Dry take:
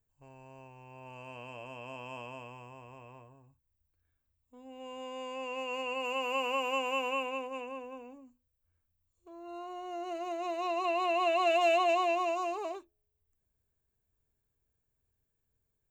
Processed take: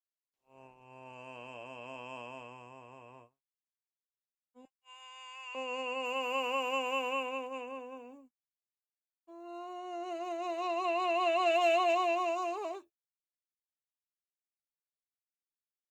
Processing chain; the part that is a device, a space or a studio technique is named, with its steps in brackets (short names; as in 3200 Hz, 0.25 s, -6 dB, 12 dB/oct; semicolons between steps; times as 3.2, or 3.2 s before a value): 4.65–5.55 HPF 1100 Hz 24 dB/oct; video call (HPF 160 Hz 12 dB/oct; AGC gain up to 7 dB; gate -46 dBFS, range -57 dB; gain -8 dB; Opus 32 kbps 48000 Hz)